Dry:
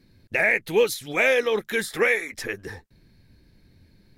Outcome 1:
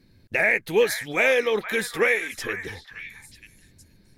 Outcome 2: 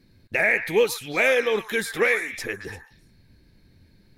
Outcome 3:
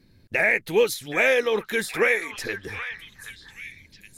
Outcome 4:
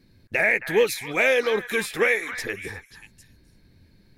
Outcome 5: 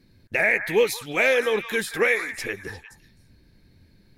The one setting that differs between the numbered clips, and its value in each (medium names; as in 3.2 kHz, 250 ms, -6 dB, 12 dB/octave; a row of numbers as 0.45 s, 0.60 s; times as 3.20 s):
repeats whose band climbs or falls, time: 469 ms, 115 ms, 773 ms, 268 ms, 175 ms